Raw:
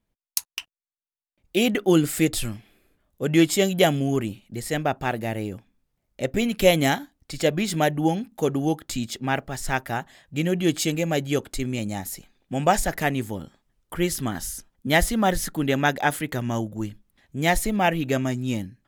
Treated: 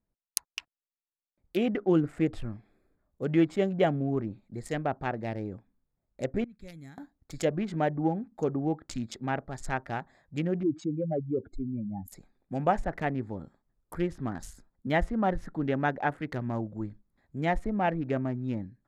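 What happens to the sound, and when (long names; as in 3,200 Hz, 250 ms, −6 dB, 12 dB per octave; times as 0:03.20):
0:06.44–0:06.98: guitar amp tone stack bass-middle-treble 6-0-2
0:10.63–0:12.12: expanding power law on the bin magnitudes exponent 2.7
whole clip: adaptive Wiener filter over 15 samples; high-shelf EQ 6,600 Hz +12 dB; treble cut that deepens with the level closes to 1,600 Hz, closed at −20 dBFS; level −5.5 dB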